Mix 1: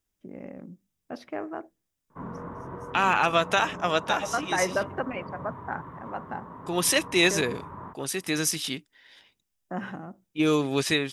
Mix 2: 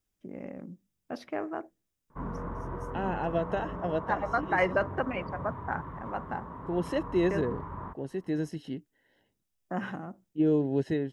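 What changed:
second voice: add running mean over 37 samples; background: remove HPF 110 Hz 12 dB/oct

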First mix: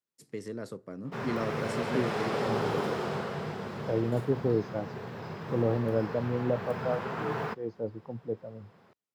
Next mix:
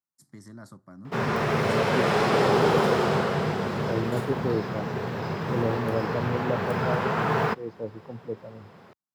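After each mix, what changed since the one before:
first voice: add fixed phaser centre 1100 Hz, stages 4; background +9.5 dB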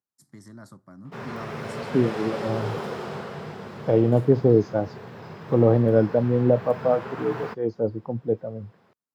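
second voice +10.0 dB; background -10.0 dB

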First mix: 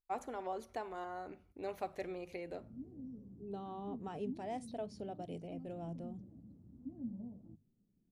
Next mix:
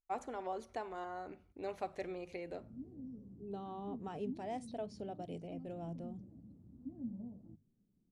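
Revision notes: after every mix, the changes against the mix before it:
master: add LPF 9900 Hz 24 dB/oct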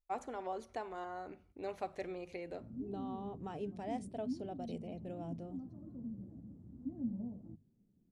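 second voice: entry -0.60 s; background +4.5 dB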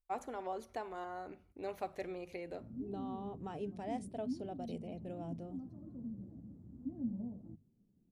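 master: remove LPF 9900 Hz 24 dB/oct

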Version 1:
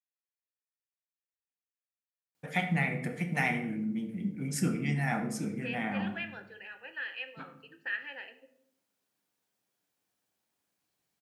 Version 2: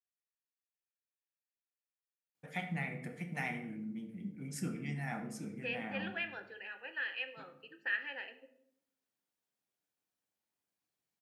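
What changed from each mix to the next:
first voice -9.0 dB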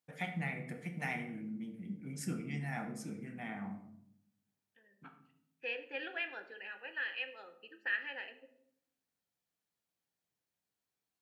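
first voice: entry -2.35 s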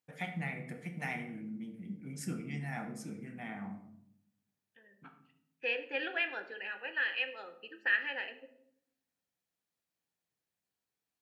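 second voice +5.5 dB

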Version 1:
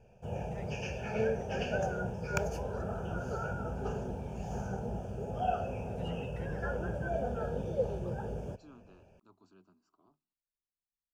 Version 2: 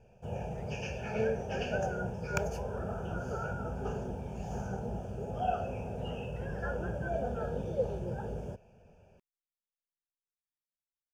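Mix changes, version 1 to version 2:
first voice -6.5 dB; second voice: muted

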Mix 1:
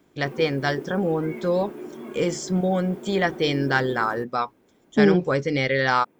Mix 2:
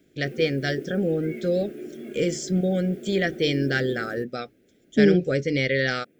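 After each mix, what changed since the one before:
master: add Butterworth band-stop 980 Hz, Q 1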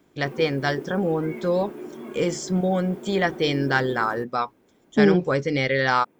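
master: remove Butterworth band-stop 980 Hz, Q 1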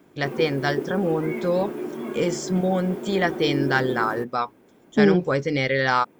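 background +6.0 dB

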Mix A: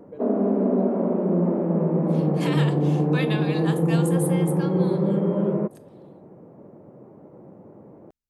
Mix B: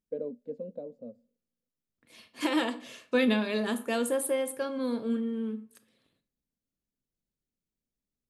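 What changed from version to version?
first voice: send off; background: muted; master: add graphic EQ 125/250/500/1000 Hz +4/+9/+8/-3 dB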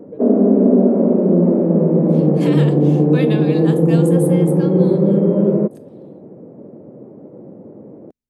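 background: unmuted

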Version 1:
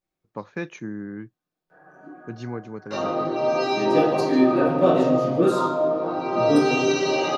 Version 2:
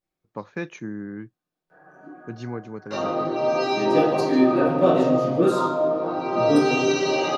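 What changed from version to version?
none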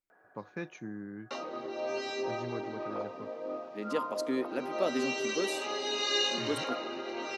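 first voice -8.5 dB; background: entry -1.60 s; reverb: off

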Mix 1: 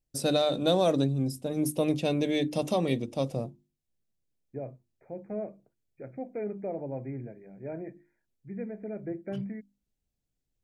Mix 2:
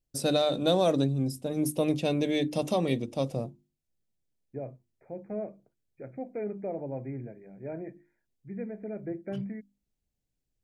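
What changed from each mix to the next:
none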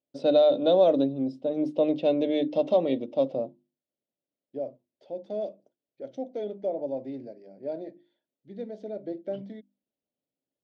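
second voice: remove brick-wall FIR low-pass 2500 Hz; master: add speaker cabinet 270–3600 Hz, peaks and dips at 270 Hz +6 dB, 580 Hz +9 dB, 1200 Hz -6 dB, 1700 Hz -8 dB, 2400 Hz -7 dB

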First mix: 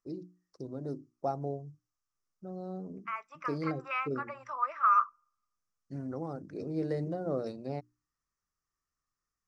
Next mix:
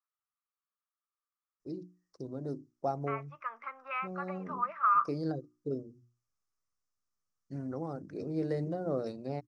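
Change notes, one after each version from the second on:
first voice: entry +1.60 s; second voice: add air absorption 280 m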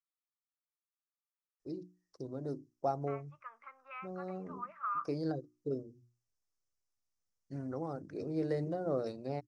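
second voice -10.5 dB; master: add bell 200 Hz -4 dB 0.98 oct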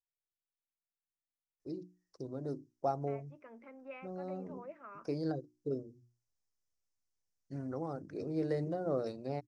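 second voice: remove resonant high-pass 1200 Hz, resonance Q 8.4

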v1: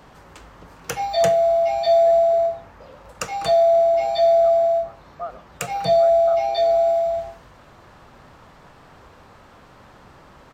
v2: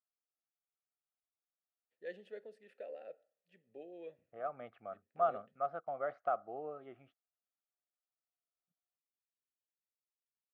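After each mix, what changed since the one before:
background: muted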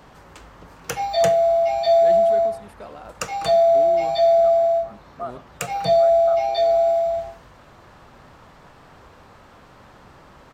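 first voice: remove vowel filter e; background: unmuted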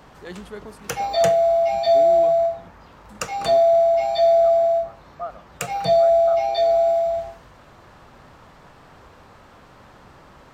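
first voice: entry -1.80 s

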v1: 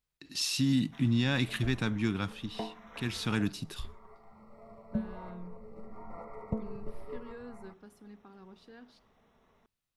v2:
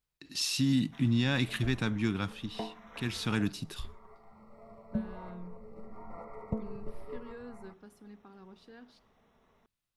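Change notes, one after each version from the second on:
background: send off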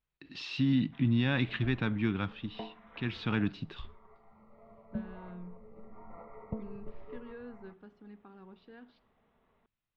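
background -4.0 dB; master: add LPF 3400 Hz 24 dB/oct

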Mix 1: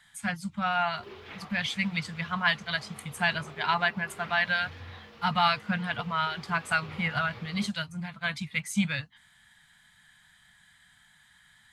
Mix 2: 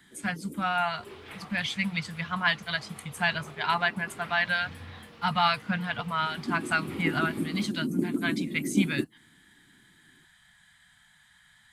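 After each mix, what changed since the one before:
first sound: unmuted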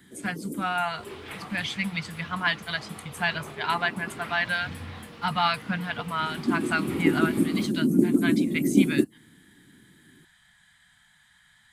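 first sound +8.0 dB; second sound +5.0 dB

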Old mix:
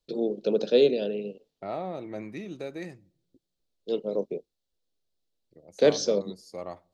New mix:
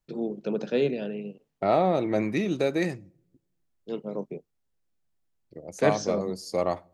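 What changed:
first voice: add graphic EQ 125/500/1000/2000/4000 Hz +8/-8/+5/+6/-12 dB; second voice +11.5 dB

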